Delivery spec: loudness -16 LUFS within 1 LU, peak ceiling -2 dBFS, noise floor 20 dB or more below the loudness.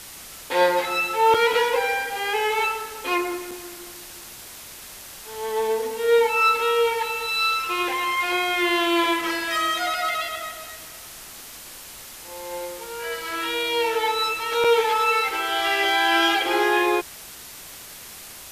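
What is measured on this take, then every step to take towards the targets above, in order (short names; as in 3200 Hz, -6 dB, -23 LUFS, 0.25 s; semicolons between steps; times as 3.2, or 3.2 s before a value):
dropouts 3; longest dropout 4.6 ms; noise floor -41 dBFS; noise floor target -42 dBFS; loudness -22.0 LUFS; peak -6.5 dBFS; loudness target -16.0 LUFS
-> interpolate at 1.34/3.51/14.64, 4.6 ms; noise print and reduce 6 dB; gain +6 dB; limiter -2 dBFS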